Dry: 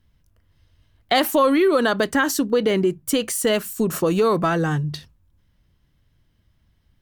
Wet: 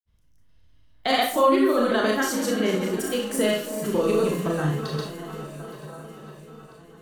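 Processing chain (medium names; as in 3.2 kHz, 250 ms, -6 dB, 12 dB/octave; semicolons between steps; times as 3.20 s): echo whose repeats swap between lows and highs 213 ms, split 1.2 kHz, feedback 83%, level -11 dB; granulator, pitch spread up and down by 0 st; Schroeder reverb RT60 0.37 s, combs from 26 ms, DRR 0.5 dB; trim -5 dB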